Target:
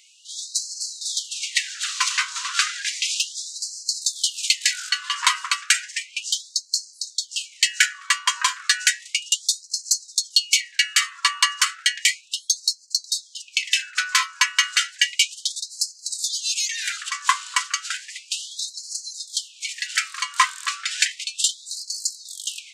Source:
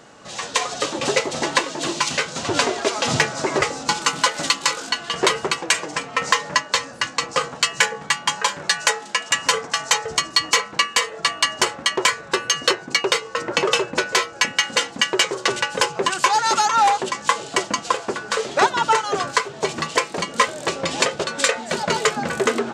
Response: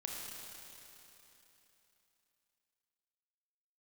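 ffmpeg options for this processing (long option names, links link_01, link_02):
-af "highshelf=frequency=8000:gain=5,afftfilt=real='re*gte(b*sr/1024,930*pow(4100/930,0.5+0.5*sin(2*PI*0.33*pts/sr)))':imag='im*gte(b*sr/1024,930*pow(4100/930,0.5+0.5*sin(2*PI*0.33*pts/sr)))':win_size=1024:overlap=0.75"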